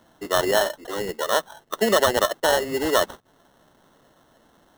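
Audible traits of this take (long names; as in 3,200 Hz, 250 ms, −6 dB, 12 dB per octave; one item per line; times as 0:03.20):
aliases and images of a low sample rate 2,400 Hz, jitter 0%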